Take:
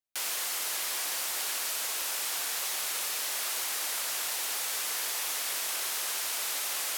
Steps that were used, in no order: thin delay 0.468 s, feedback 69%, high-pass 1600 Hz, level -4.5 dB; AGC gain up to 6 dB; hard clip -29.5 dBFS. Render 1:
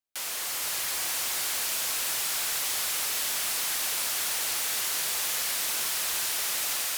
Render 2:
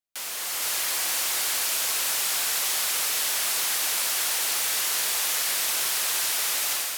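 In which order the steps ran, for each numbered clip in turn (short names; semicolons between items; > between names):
AGC > hard clip > thin delay; hard clip > thin delay > AGC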